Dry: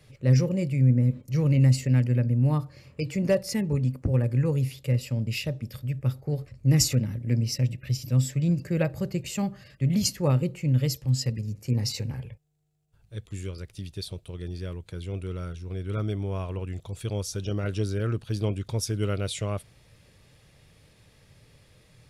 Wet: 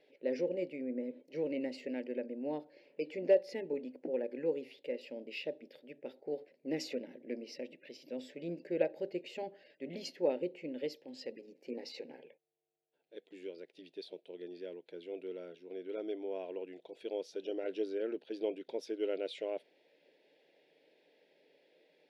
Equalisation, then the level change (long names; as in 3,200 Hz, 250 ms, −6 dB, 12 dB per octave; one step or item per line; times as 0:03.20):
linear-phase brick-wall high-pass 180 Hz
high-frequency loss of the air 350 metres
phaser with its sweep stopped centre 490 Hz, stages 4
−1.0 dB